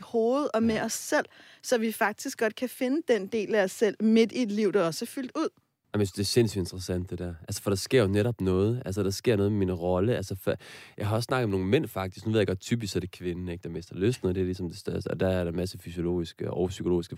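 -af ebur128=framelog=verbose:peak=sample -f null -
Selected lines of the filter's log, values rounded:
Integrated loudness:
  I:         -28.3 LUFS
  Threshold: -38.4 LUFS
Loudness range:
  LRA:         3.8 LU
  Threshold: -48.3 LUFS
  LRA low:   -30.6 LUFS
  LRA high:  -26.9 LUFS
Sample peak:
  Peak:      -11.2 dBFS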